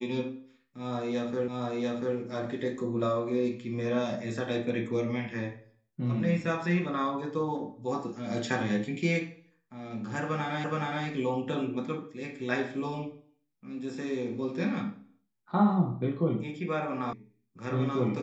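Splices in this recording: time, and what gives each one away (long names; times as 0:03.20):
0:01.48: the same again, the last 0.69 s
0:10.64: the same again, the last 0.42 s
0:17.13: cut off before it has died away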